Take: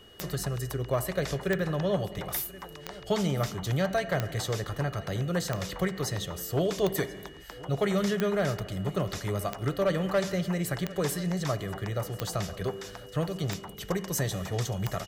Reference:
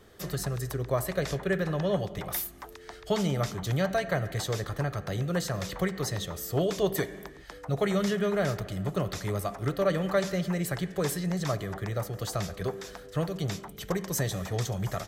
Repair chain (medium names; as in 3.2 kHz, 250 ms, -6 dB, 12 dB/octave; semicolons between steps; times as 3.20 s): clip repair -18 dBFS; de-click; band-stop 2.9 kHz, Q 30; inverse comb 1035 ms -20.5 dB